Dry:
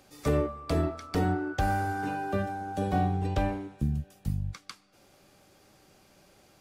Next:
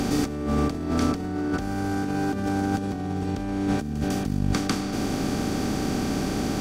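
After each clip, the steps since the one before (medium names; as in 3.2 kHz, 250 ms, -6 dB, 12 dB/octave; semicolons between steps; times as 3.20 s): spectral levelling over time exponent 0.4; fifteen-band graphic EQ 250 Hz +12 dB, 630 Hz -5 dB, 6.3 kHz +5 dB; compressor with a negative ratio -28 dBFS, ratio -1; trim +2.5 dB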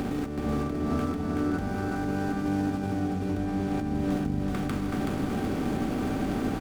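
median filter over 9 samples; peak limiter -19 dBFS, peak gain reduction 7 dB; feedback delay 377 ms, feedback 49%, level -3 dB; trim -3 dB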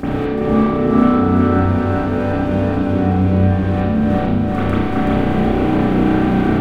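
reverberation RT60 0.85 s, pre-delay 32 ms, DRR -16.5 dB; trim -3 dB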